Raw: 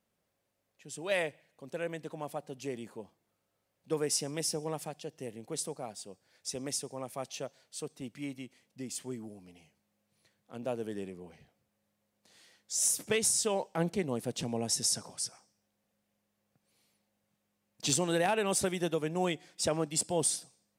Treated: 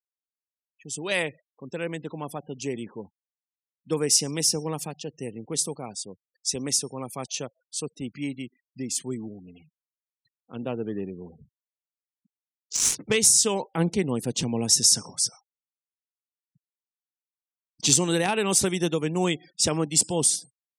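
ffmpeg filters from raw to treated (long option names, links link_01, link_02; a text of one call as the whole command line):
ffmpeg -i in.wav -filter_complex "[0:a]asettb=1/sr,asplit=3[link_01][link_02][link_03];[link_01]atrim=end=10.684[link_04];[link_02]atrim=start=10.68:end=13.14,asetpts=PTS-STARTPTS,afade=type=in:duration=0.004:curve=qsin,afade=type=out:start_time=2.456:duration=0.004:curve=qsin,adynamicsmooth=sensitivity=7:basefreq=1600[link_05];[link_03]atrim=start=13.136[link_06];[link_04][link_05]acrossfade=duration=0.004:curve1=hsin:curve2=qsin[link_07];[link_07][link_06]acrossfade=duration=0.004:curve1=qsin:curve2=hsin,afftfilt=real='re*gte(hypot(re,im),0.00251)':imag='im*gte(hypot(re,im),0.00251)':win_size=1024:overlap=0.75,equalizer=frequency=630:width_type=o:width=0.67:gain=-9,equalizer=frequency=1600:width_type=o:width=0.67:gain=-4,equalizer=frequency=6300:width_type=o:width=0.67:gain=4,dynaudnorm=framelen=180:gausssize=7:maxgain=9dB" out.wav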